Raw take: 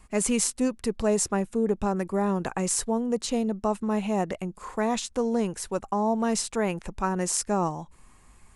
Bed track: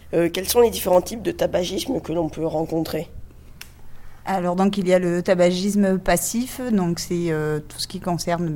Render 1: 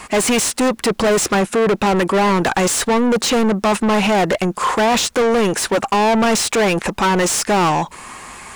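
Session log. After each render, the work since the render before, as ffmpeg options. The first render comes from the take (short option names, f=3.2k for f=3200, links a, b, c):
-filter_complex "[0:a]asplit=2[a][b];[b]highpass=f=720:p=1,volume=35dB,asoftclip=type=tanh:threshold=-7.5dB[c];[a][c]amix=inputs=2:normalize=0,lowpass=f=4.5k:p=1,volume=-6dB,acrusher=bits=9:mix=0:aa=0.000001"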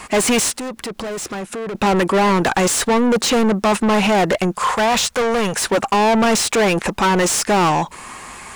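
-filter_complex "[0:a]asettb=1/sr,asplit=3[a][b][c];[a]atrim=end=0.544[d];[b]atrim=start=0.54:end=1.75,asetpts=PTS-STARTPTS,afade=t=in:d=0.004:c=qsin,afade=t=out:st=1.206:d=0.004:c=qsin,acompressor=threshold=-27dB:ratio=4:attack=3.2:release=140:knee=1:detection=peak[e];[c]atrim=start=1.746[f];[d][e]acrossfade=d=0.004:c1=hsin:c2=qsin[g];[g][f]acrossfade=d=0.004:c1=qsin:c2=hsin,asettb=1/sr,asplit=3[h][i][j];[h]atrim=end=4.544[k];[i]atrim=start=4.54:end=5.62,asetpts=PTS-STARTPTS,afade=t=in:d=0.004:c=qsin,afade=t=out:st=1.076:d=0.004:c=qsin,equalizer=f=320:w=2.6:g=-14.5[l];[j]atrim=start=5.616[m];[k][l]acrossfade=d=0.004:c1=hsin:c2=qsin[n];[n][m]acrossfade=d=0.004:c1=qsin:c2=hsin"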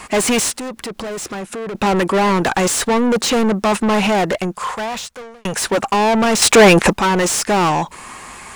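-filter_complex "[0:a]asplit=4[a][b][c][d];[a]atrim=end=5.45,asetpts=PTS-STARTPTS,afade=t=out:st=4.07:d=1.38[e];[b]atrim=start=5.45:end=6.422,asetpts=PTS-STARTPTS,afade=t=in:d=0.004:c=hsin[f];[c]atrim=start=6.418:end=6.932,asetpts=PTS-STARTPTS,volume=8dB[g];[d]atrim=start=6.928[h];[e][f]concat=n=2:v=0:a=1[i];[i][g]acrossfade=d=0.004:c1=hsin:c2=hsin[j];[j][h]acrossfade=d=0.004:c1=hsin:c2=hsin"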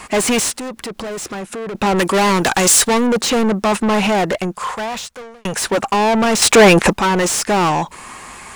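-filter_complex "[0:a]asettb=1/sr,asplit=3[a][b][c];[a]atrim=end=1.984[d];[b]atrim=start=1.98:end=3.07,asetpts=PTS-STARTPTS,afade=t=in:d=0.004:c=qsin,afade=t=out:st=1.086:d=0.004:c=qsin,highshelf=f=3.2k:g=9.5[e];[c]atrim=start=3.066[f];[d][e]acrossfade=d=0.004:c1=hsin:c2=qsin[g];[g][f]acrossfade=d=0.004:c1=qsin:c2=hsin"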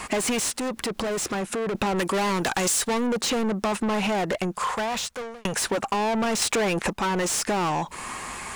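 -af "acompressor=threshold=-24dB:ratio=6"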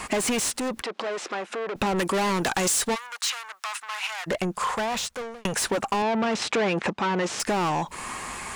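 -filter_complex "[0:a]asettb=1/sr,asplit=3[a][b][c];[a]atrim=end=0.824[d];[b]atrim=start=0.82:end=1.76,asetpts=PTS-STARTPTS,afade=t=in:d=0.004:c=qsin,afade=t=out:st=0.936:d=0.004:c=qsin,highpass=440,lowpass=4.2k[e];[c]atrim=start=1.756[f];[d][e]acrossfade=d=0.004:c1=hsin:c2=qsin[g];[g][f]acrossfade=d=0.004:c1=qsin:c2=hsin,asplit=3[h][i][j];[h]afade=t=out:st=2.94:d=0.02[k];[i]highpass=f=1.1k:w=0.5412,highpass=f=1.1k:w=1.3066,afade=t=in:st=2.94:d=0.02,afade=t=out:st=4.26:d=0.02[l];[j]afade=t=in:st=4.26:d=0.02[m];[k][l][m]amix=inputs=3:normalize=0,asettb=1/sr,asplit=3[n][o][p];[n]atrim=end=6.024[q];[o]atrim=start=6.02:end=7.4,asetpts=PTS-STARTPTS,afade=t=in:d=0.004:c=qsin,afade=t=out:st=1.376:d=0.004:c=qsin,highpass=110,lowpass=4.5k[r];[p]atrim=start=7.396[s];[q][r]acrossfade=d=0.004:c1=hsin:c2=qsin[t];[t][s]acrossfade=d=0.004:c1=qsin:c2=hsin"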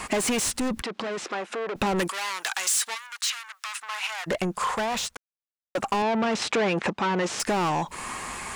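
-filter_complex "[0:a]asplit=3[a][b][c];[a]afade=t=out:st=0.45:d=0.02[d];[b]asubboost=boost=11.5:cutoff=230,afade=t=in:st=0.45:d=0.02,afade=t=out:st=1.24:d=0.02[e];[c]afade=t=in:st=1.24:d=0.02[f];[d][e][f]amix=inputs=3:normalize=0,asettb=1/sr,asplit=3[g][h][i];[g]atrim=end=2.094[j];[h]atrim=start=2.09:end=3.77,asetpts=PTS-STARTPTS,afade=t=in:d=0.004:c=qsin,afade=t=out:st=1.676:d=0.004:c=qsin,highpass=1.3k[k];[i]atrim=start=3.766[l];[j][k]acrossfade=d=0.004:c1=hsin:c2=qsin[m];[m][l]acrossfade=d=0.004:c1=qsin:c2=hsin,asplit=3[n][o][p];[n]atrim=end=5.17,asetpts=PTS-STARTPTS,afade=t=out:st=5.166:d=0.004:c=hsin[q];[o]atrim=start=5.17:end=5.75,asetpts=PTS-STARTPTS,volume=0[r];[p]atrim=start=5.75,asetpts=PTS-STARTPTS,afade=t=in:d=0.004:c=hsin[s];[q][r][s]concat=n=3:v=0:a=1"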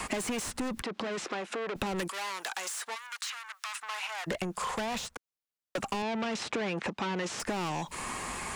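-filter_complex "[0:a]acrossover=split=260|830|1900[a][b][c][d];[a]acompressor=threshold=-38dB:ratio=4[e];[b]acompressor=threshold=-37dB:ratio=4[f];[c]acompressor=threshold=-43dB:ratio=4[g];[d]acompressor=threshold=-39dB:ratio=4[h];[e][f][g][h]amix=inputs=4:normalize=0"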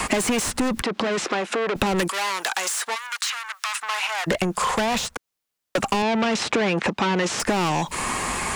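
-af "volume=11dB"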